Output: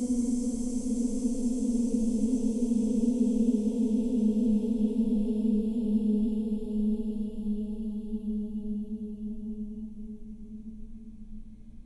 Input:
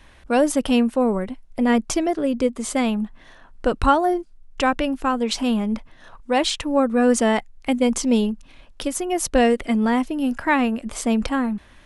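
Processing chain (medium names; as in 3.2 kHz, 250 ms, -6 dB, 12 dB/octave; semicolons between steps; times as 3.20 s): FFT filter 100 Hz 0 dB, 2.6 kHz -30 dB, 8.5 kHz -15 dB; Paulstretch 23×, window 0.50 s, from 7.99 s; hum 60 Hz, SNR 28 dB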